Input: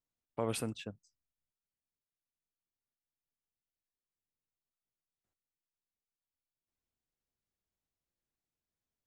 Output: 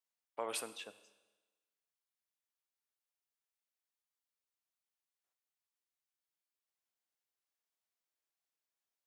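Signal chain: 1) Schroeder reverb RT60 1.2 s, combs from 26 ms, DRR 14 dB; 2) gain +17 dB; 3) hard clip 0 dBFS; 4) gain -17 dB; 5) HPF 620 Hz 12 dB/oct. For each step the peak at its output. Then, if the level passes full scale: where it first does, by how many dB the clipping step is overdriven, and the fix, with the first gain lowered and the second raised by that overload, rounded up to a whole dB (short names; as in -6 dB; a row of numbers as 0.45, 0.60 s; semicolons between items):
-20.5, -3.5, -3.5, -20.5, -24.0 dBFS; no overload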